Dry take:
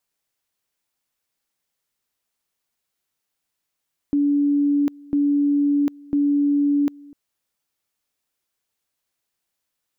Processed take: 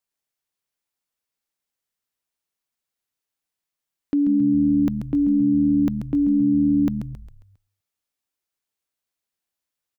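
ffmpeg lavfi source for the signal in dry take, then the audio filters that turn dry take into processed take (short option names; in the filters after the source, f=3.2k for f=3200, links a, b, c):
-f lavfi -i "aevalsrc='pow(10,(-15.5-24.5*gte(mod(t,1),0.75))/20)*sin(2*PI*287*t)':d=3:s=44100"
-filter_complex "[0:a]agate=range=-7dB:threshold=-40dB:ratio=16:detection=peak,asplit=2[a][b];[b]asplit=5[c][d][e][f][g];[c]adelay=135,afreqshift=-77,volume=-8.5dB[h];[d]adelay=270,afreqshift=-154,volume=-15.4dB[i];[e]adelay=405,afreqshift=-231,volume=-22.4dB[j];[f]adelay=540,afreqshift=-308,volume=-29.3dB[k];[g]adelay=675,afreqshift=-385,volume=-36.2dB[l];[h][i][j][k][l]amix=inputs=5:normalize=0[m];[a][m]amix=inputs=2:normalize=0"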